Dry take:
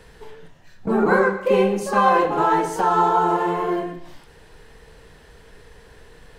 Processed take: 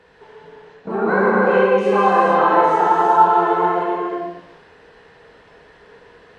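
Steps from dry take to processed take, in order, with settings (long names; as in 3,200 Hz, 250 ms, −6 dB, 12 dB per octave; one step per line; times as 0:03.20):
high-pass filter 480 Hz 6 dB per octave
head-to-tape spacing loss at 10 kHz 24 dB
reverb whose tail is shaped and stops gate 500 ms flat, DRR −5.5 dB
level +1.5 dB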